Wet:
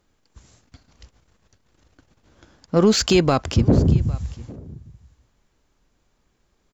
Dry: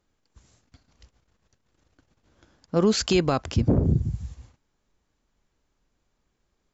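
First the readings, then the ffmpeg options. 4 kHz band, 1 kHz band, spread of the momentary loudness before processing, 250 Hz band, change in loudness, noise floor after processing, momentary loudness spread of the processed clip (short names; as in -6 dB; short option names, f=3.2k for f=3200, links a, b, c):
+5.5 dB, +5.0 dB, 11 LU, +5.0 dB, +5.0 dB, -68 dBFS, 17 LU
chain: -filter_complex "[0:a]asplit=2[a][b];[b]asoftclip=type=tanh:threshold=-28.5dB,volume=-7.5dB[c];[a][c]amix=inputs=2:normalize=0,aecho=1:1:805:0.0794,volume=4dB"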